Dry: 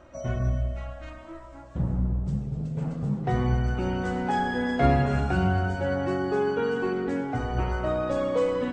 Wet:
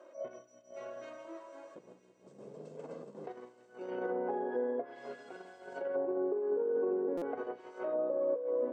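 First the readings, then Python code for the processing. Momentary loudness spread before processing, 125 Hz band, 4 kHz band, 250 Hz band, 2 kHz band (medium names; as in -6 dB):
9 LU, -35.0 dB, under -20 dB, -14.0 dB, -17.5 dB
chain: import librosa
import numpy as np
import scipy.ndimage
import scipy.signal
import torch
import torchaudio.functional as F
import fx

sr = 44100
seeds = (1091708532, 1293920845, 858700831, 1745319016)

p1 = np.clip(x, -10.0 ** (-19.5 / 20.0), 10.0 ** (-19.5 / 20.0))
p2 = fx.tilt_shelf(p1, sr, db=7.5, hz=700.0)
p3 = p2 + 0.41 * np.pad(p2, (int(1.9 * sr / 1000.0), 0))[:len(p2)]
p4 = p3 + fx.echo_single(p3, sr, ms=560, db=-12.5, dry=0)
p5 = fx.over_compress(p4, sr, threshold_db=-23.0, ratio=-0.5)
p6 = scipy.signal.sosfilt(scipy.signal.butter(4, 350.0, 'highpass', fs=sr, output='sos'), p5)
p7 = fx.echo_wet_highpass(p6, sr, ms=167, feedback_pct=81, hz=3000.0, wet_db=-9.5)
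p8 = fx.env_lowpass_down(p7, sr, base_hz=690.0, full_db=-22.0)
p9 = fx.high_shelf(p8, sr, hz=6900.0, db=11.0)
p10 = fx.buffer_glitch(p9, sr, at_s=(7.17,), block=256, repeats=7)
p11 = fx.attack_slew(p10, sr, db_per_s=200.0)
y = p11 * librosa.db_to_amplitude(-7.5)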